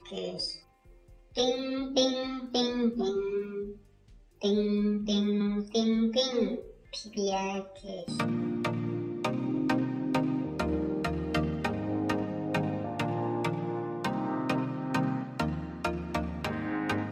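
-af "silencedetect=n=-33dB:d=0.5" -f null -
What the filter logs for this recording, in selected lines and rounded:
silence_start: 0.55
silence_end: 1.36 | silence_duration: 0.82
silence_start: 3.69
silence_end: 4.42 | silence_duration: 0.73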